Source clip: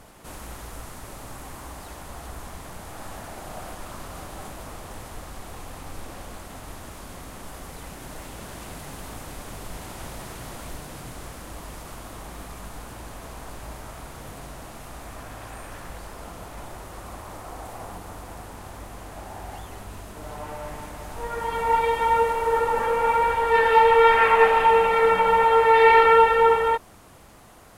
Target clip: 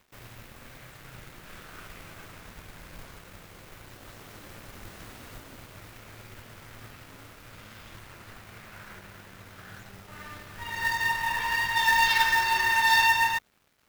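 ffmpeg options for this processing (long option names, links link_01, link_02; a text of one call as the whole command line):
ffmpeg -i in.wav -af "aeval=exprs='sgn(val(0))*max(abs(val(0))-0.00447,0)':channel_layout=same,asetrate=88200,aresample=44100,acrusher=bits=3:mode=log:mix=0:aa=0.000001,volume=-6dB" out.wav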